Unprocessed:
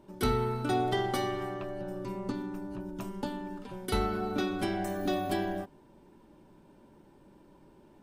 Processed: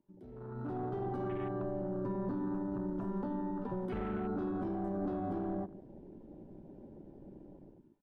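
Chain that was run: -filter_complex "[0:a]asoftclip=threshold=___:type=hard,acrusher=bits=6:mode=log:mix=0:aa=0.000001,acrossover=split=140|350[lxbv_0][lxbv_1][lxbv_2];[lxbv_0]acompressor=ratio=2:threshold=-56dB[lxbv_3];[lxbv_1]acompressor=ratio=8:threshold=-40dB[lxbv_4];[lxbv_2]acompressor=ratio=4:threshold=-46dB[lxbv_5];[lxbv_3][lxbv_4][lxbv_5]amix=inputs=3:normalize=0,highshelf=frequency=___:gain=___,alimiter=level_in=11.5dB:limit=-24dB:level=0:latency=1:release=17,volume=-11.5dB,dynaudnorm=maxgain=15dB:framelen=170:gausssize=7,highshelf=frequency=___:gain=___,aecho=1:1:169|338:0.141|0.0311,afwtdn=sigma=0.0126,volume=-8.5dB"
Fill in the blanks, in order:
-30dB, 7300, -11, 3200, -6.5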